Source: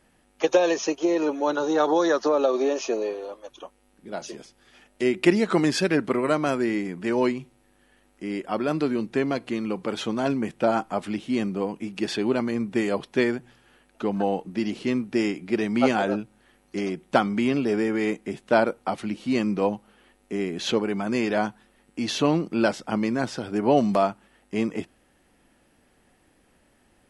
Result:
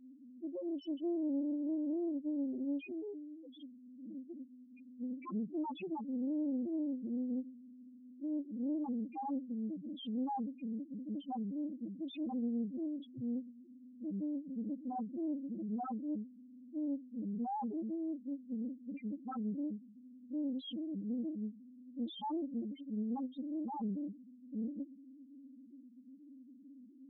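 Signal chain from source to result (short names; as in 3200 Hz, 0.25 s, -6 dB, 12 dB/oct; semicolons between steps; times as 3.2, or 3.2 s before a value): vowel filter i; wavefolder -31 dBFS; power-law curve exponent 0.5; loudest bins only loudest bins 1; Doppler distortion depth 0.31 ms; gain +3.5 dB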